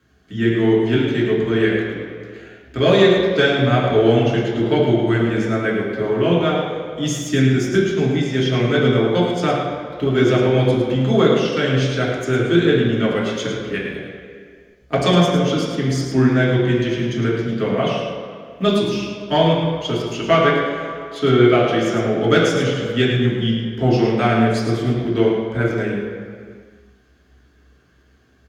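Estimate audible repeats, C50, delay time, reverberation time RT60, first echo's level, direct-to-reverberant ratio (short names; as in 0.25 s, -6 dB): 1, 1.0 dB, 0.107 s, 2.0 s, -7.0 dB, -5.0 dB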